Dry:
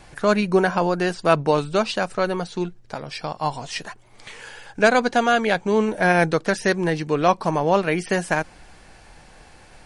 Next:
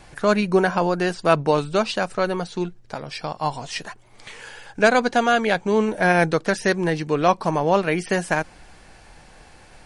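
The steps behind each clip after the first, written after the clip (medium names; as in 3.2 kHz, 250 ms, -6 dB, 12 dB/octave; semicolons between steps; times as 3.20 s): no audible change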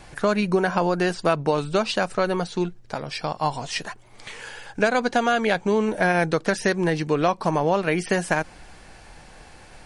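compression, threshold -18 dBFS, peak gain reduction 8 dB; trim +1.5 dB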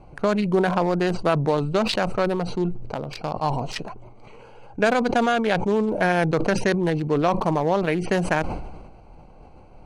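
local Wiener filter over 25 samples; decay stretcher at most 43 dB/s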